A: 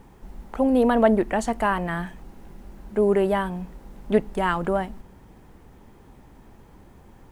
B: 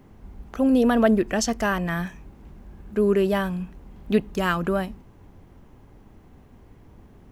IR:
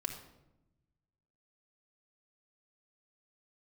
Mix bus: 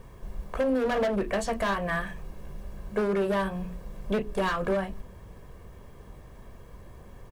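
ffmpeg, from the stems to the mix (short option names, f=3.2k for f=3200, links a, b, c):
-filter_complex "[0:a]aecho=1:1:1.8:0.81,asoftclip=type=hard:threshold=-19.5dB,volume=-1dB[a];[1:a]lowpass=3.3k,bandreject=f=60:t=h:w=6,bandreject=f=120:t=h:w=6,bandreject=f=180:t=h:w=6,bandreject=f=240:t=h:w=6,bandreject=f=300:t=h:w=6,bandreject=f=360:t=h:w=6,bandreject=f=420:t=h:w=6,flanger=delay=19.5:depth=2.5:speed=2.8,adelay=15,volume=-2.5dB[b];[a][b]amix=inputs=2:normalize=0,alimiter=limit=-19dB:level=0:latency=1:release=266"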